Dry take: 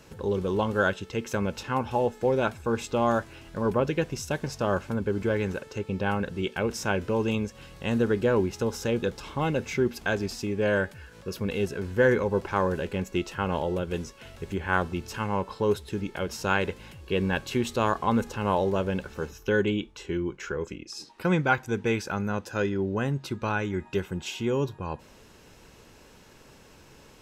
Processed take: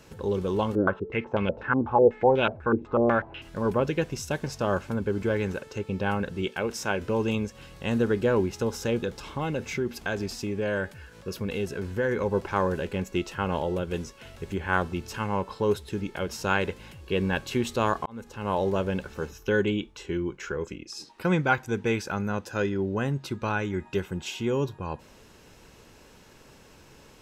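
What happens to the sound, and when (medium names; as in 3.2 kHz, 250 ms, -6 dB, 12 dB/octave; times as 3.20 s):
0.75–3.42 s: step-sequenced low-pass 8.1 Hz 320–3000 Hz
6.51–7.01 s: bass shelf 190 Hz -7.5 dB
8.99–12.21 s: compression 2:1, threshold -26 dBFS
18.06–18.67 s: fade in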